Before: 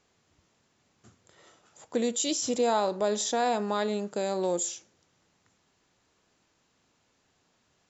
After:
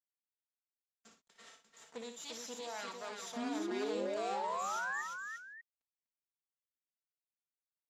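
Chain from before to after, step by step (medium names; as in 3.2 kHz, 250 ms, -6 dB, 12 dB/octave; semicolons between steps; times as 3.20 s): comb filter that takes the minimum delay 4.4 ms; gate -60 dBFS, range -23 dB; high-pass 110 Hz 24 dB/octave; tilt EQ +3 dB/octave; reverse; compression 6:1, threshold -42 dBFS, peak gain reduction 20.5 dB; reverse; painted sound rise, 3.36–5.02 s, 230–1900 Hz -39 dBFS; word length cut 12-bit, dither none; distance through air 82 m; on a send: multi-tap echo 59/347/594 ms -8/-5/-12 dB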